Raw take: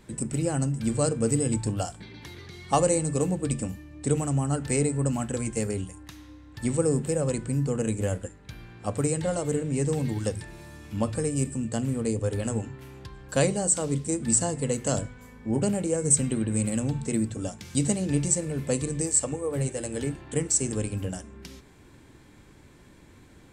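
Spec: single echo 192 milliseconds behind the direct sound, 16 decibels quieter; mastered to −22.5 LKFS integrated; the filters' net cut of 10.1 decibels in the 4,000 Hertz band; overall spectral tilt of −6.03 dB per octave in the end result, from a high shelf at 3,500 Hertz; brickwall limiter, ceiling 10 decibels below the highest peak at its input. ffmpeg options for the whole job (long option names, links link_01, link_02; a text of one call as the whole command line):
ffmpeg -i in.wav -af "highshelf=frequency=3500:gain=-8.5,equalizer=frequency=4000:width_type=o:gain=-8,alimiter=limit=-20.5dB:level=0:latency=1,aecho=1:1:192:0.158,volume=8.5dB" out.wav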